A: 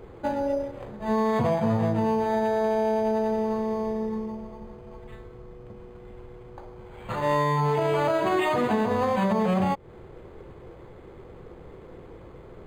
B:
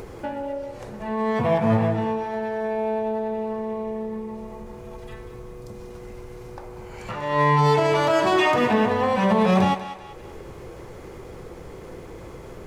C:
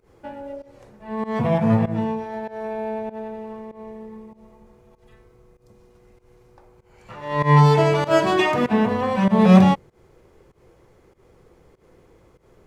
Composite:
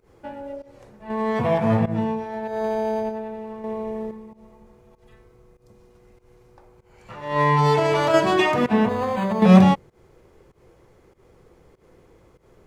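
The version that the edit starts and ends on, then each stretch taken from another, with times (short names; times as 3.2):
C
1.1–1.8 from B
2.53–3.1 from A, crossfade 0.24 s
3.64–4.11 from B
7.36–8.14 from B
8.89–9.42 from A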